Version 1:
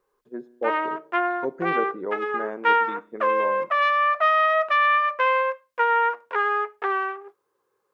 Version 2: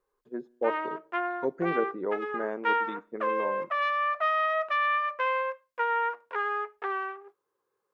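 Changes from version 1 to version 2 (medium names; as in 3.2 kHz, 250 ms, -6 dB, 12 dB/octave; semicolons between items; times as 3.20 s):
speech: send -9.5 dB; background -7.0 dB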